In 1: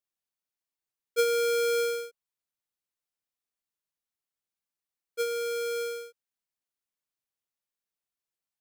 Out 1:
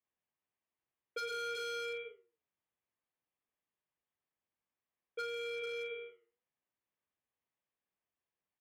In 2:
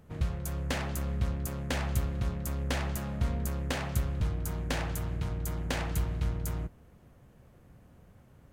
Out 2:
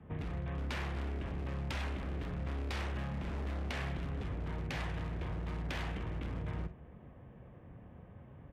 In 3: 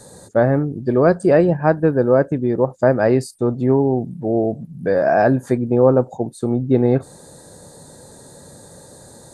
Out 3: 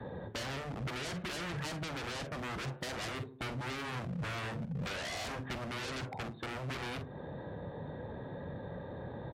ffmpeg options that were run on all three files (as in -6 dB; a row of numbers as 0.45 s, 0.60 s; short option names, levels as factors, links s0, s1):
-filter_complex "[0:a]asplit=2[s0][s1];[s1]acompressor=threshold=0.0447:ratio=12,volume=1.33[s2];[s0][s2]amix=inputs=2:normalize=0,lowpass=2200,bandreject=f=1400:w=9,aresample=8000,asoftclip=type=tanh:threshold=0.188,aresample=44100,asplit=2[s3][s4];[s4]adelay=73,lowpass=f=1400:p=1,volume=0.119,asplit=2[s5][s6];[s6]adelay=73,lowpass=f=1400:p=1,volume=0.36,asplit=2[s7][s8];[s8]adelay=73,lowpass=f=1400:p=1,volume=0.36[s9];[s3][s5][s7][s9]amix=inputs=4:normalize=0,adynamicequalizer=threshold=0.0158:dfrequency=530:dqfactor=4.7:tfrequency=530:tqfactor=4.7:attack=5:release=100:ratio=0.375:range=2.5:mode=cutabove:tftype=bell,flanger=delay=3.4:depth=6.8:regen=-86:speed=0.56:shape=triangular,aeval=exprs='0.0376*(abs(mod(val(0)/0.0376+3,4)-2)-1)':c=same,asplit=2[s10][s11];[s11]adelay=46,volume=0.251[s12];[s10][s12]amix=inputs=2:normalize=0,acrossover=split=130|1500[s13][s14][s15];[s13]acompressor=threshold=0.0126:ratio=4[s16];[s14]acompressor=threshold=0.00631:ratio=4[s17];[s15]acompressor=threshold=0.00891:ratio=4[s18];[s16][s17][s18]amix=inputs=3:normalize=0,highpass=45,volume=1.19" -ar 44100 -c:a libmp3lame -b:a 64k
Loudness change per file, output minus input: -12.0 LU, -6.0 LU, -22.5 LU